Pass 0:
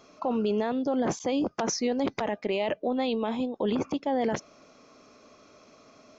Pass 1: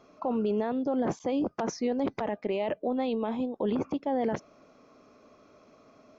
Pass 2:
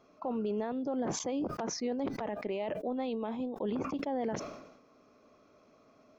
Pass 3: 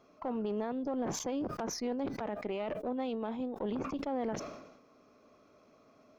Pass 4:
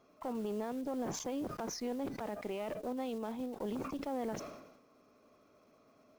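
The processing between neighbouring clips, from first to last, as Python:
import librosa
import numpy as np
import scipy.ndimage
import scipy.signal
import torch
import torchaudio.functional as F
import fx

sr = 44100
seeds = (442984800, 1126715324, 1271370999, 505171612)

y1 = fx.high_shelf(x, sr, hz=2600.0, db=-11.5)
y1 = y1 * 10.0 ** (-1.0 / 20.0)
y2 = fx.sustainer(y1, sr, db_per_s=59.0)
y2 = y2 * 10.0 ** (-5.5 / 20.0)
y3 = fx.diode_clip(y2, sr, knee_db=-31.5)
y4 = fx.block_float(y3, sr, bits=5)
y4 = y4 * 10.0 ** (-3.0 / 20.0)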